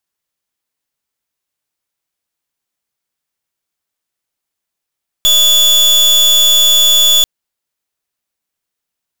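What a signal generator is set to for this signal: pulse 3440 Hz, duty 36% -8.5 dBFS 1.99 s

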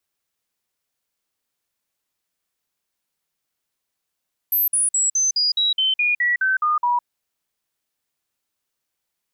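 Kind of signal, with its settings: stepped sine 12300 Hz down, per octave 3, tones 12, 0.16 s, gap 0.05 s -16 dBFS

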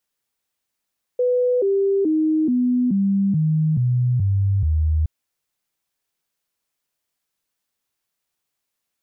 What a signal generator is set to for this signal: stepped sine 496 Hz down, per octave 3, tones 9, 0.43 s, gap 0.00 s -15.5 dBFS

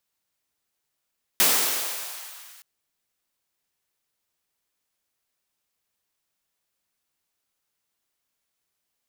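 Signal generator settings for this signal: swept filtered noise white, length 1.22 s highpass, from 230 Hz, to 1300 Hz, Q 1, exponential, gain ramp -32.5 dB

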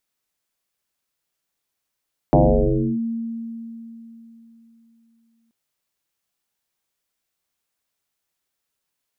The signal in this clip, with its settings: FM tone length 3.18 s, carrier 229 Hz, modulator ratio 0.42, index 5.8, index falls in 0.66 s linear, decay 3.56 s, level -9.5 dB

